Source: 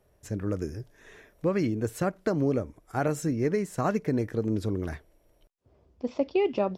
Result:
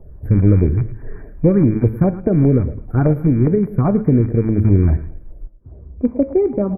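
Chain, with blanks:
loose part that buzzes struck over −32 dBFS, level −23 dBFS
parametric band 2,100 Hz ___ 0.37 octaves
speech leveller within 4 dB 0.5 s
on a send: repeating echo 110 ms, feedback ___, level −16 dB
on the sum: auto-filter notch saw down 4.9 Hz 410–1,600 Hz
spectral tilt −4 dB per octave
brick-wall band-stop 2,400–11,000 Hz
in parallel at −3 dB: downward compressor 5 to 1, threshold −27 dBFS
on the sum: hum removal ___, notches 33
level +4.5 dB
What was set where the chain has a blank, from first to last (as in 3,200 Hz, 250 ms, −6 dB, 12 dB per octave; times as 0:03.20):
−13 dB, 27%, 108.8 Hz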